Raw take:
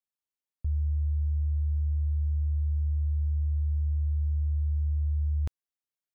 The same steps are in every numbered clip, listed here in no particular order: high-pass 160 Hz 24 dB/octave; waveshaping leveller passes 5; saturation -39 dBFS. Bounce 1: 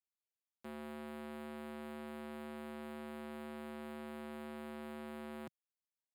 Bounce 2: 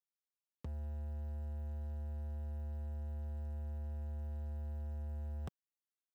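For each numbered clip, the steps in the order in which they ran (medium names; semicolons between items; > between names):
waveshaping leveller > saturation > high-pass; high-pass > waveshaping leveller > saturation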